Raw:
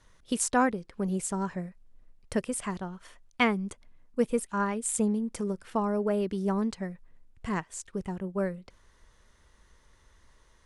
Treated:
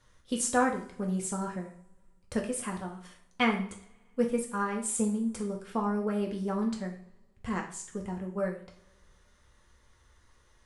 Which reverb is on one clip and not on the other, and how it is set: two-slope reverb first 0.46 s, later 1.9 s, from -27 dB, DRR 0.5 dB; trim -4 dB

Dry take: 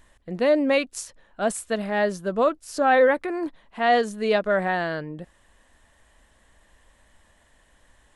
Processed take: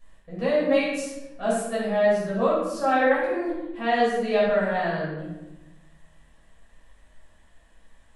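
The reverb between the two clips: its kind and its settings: simulated room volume 420 m³, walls mixed, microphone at 5.8 m; trim -14.5 dB

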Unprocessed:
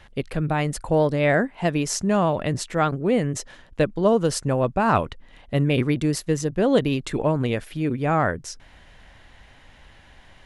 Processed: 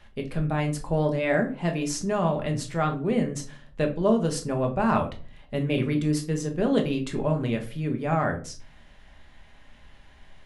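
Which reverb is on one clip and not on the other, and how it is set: simulated room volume 250 m³, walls furnished, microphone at 1.3 m; trim -6.5 dB

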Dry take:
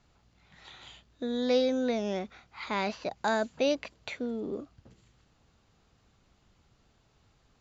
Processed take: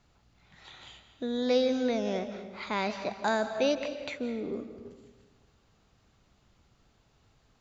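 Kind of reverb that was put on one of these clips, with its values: algorithmic reverb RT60 1.3 s, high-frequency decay 0.75×, pre-delay 115 ms, DRR 9 dB

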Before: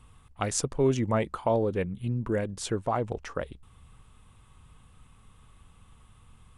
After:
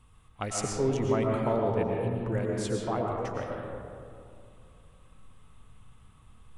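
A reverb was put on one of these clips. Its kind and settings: algorithmic reverb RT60 2.5 s, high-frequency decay 0.35×, pre-delay 75 ms, DRR -1 dB; trim -4.5 dB

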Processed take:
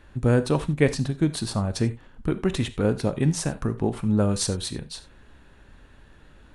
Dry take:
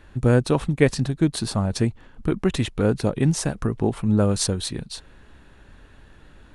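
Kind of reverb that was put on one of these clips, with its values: gated-style reverb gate 110 ms flat, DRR 11.5 dB; trim -2.5 dB

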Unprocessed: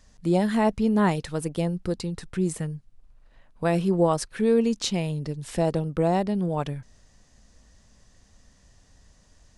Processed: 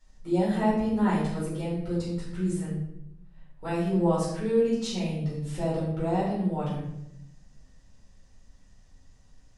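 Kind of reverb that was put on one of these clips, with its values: simulated room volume 220 m³, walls mixed, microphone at 4.4 m; trim -17 dB

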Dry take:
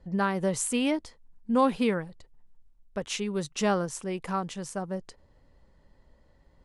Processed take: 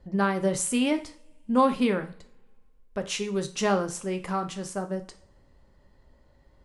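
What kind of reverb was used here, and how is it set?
two-slope reverb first 0.4 s, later 1.9 s, from -28 dB, DRR 6.5 dB; trim +1 dB

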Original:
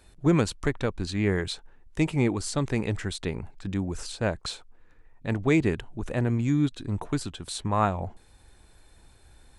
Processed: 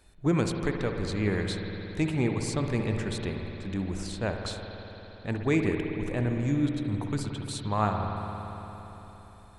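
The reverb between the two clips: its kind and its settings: spring tank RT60 3.9 s, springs 57 ms, chirp 25 ms, DRR 3 dB; trim -3.5 dB

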